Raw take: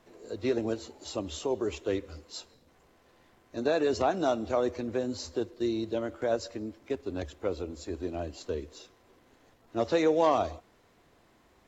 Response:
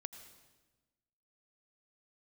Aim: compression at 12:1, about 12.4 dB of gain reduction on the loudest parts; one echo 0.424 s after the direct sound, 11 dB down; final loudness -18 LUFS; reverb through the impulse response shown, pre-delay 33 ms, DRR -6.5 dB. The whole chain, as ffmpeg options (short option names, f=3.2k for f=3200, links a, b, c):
-filter_complex "[0:a]acompressor=threshold=-33dB:ratio=12,aecho=1:1:424:0.282,asplit=2[a][b];[1:a]atrim=start_sample=2205,adelay=33[c];[b][c]afir=irnorm=-1:irlink=0,volume=10dB[d];[a][d]amix=inputs=2:normalize=0,volume=14dB"